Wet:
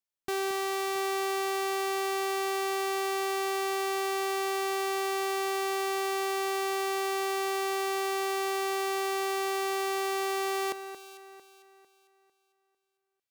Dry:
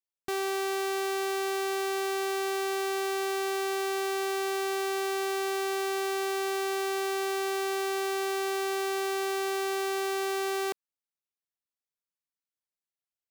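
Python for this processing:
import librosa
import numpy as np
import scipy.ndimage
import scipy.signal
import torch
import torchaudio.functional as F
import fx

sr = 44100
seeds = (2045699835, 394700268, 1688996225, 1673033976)

y = fx.echo_alternate(x, sr, ms=225, hz=2200.0, feedback_pct=60, wet_db=-8.5)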